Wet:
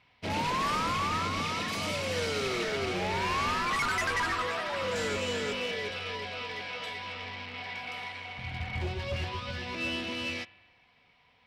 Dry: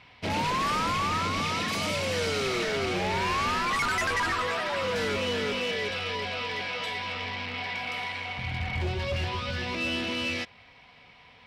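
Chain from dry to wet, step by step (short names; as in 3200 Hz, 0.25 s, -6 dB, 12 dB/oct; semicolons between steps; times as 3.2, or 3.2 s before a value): 4.91–5.53 bell 7300 Hz +13 dB 0.25 oct; spring tank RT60 1.5 s, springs 42 ms, chirp 75 ms, DRR 12.5 dB; upward expander 1.5:1, over -44 dBFS; gain -2 dB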